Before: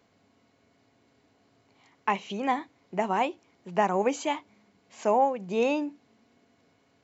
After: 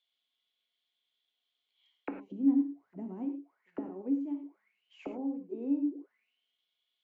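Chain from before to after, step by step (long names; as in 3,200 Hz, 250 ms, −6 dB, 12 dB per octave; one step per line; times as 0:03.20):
0:02.22–0:03.23: bass and treble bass +13 dB, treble +8 dB
envelope filter 280–3,500 Hz, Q 18, down, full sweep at −27 dBFS
reverb whose tail is shaped and stops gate 130 ms flat, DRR 5 dB
level +5 dB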